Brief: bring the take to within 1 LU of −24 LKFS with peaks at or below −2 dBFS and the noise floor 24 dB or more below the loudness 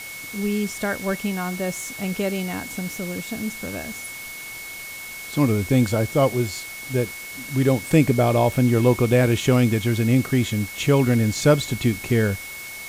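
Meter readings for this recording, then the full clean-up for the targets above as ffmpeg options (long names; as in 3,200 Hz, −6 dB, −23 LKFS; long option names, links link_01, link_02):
interfering tone 2,200 Hz; level of the tone −35 dBFS; background noise floor −36 dBFS; target noise floor −46 dBFS; integrated loudness −22.0 LKFS; sample peak −3.0 dBFS; target loudness −24.0 LKFS
→ -af "bandreject=frequency=2200:width=30"
-af "afftdn=noise_reduction=10:noise_floor=-36"
-af "volume=-2dB"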